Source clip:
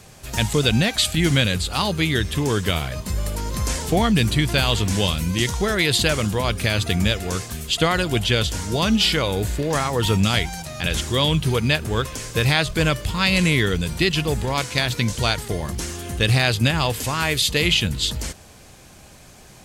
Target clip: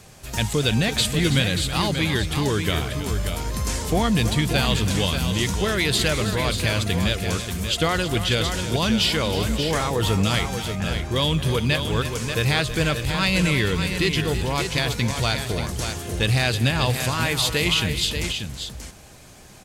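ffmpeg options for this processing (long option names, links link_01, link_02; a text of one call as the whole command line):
ffmpeg -i in.wav -filter_complex "[0:a]asettb=1/sr,asplit=3[link_01][link_02][link_03];[link_01]atrim=end=10.754[link_04];[link_02]atrim=start=10.75:end=11.16,asetpts=PTS-STARTPTS,afade=type=in:duration=0.004:curve=qsin,afade=type=out:start_time=0.406:duration=0.004:curve=qsin,lowpass=1600[link_05];[link_03]atrim=start=11.156[link_06];[link_04][link_05]acrossfade=duration=0.004:curve1=hsin:curve2=qsin[link_07];[link_07][link_06]acrossfade=duration=0.004:curve1=qsin:curve2=hsin,asplit=2[link_08][link_09];[link_09]asoftclip=type=tanh:threshold=-17dB,volume=-4dB[link_10];[link_08][link_10]amix=inputs=2:normalize=0,aecho=1:1:219|325|585:0.133|0.251|0.422,volume=-5.5dB" out.wav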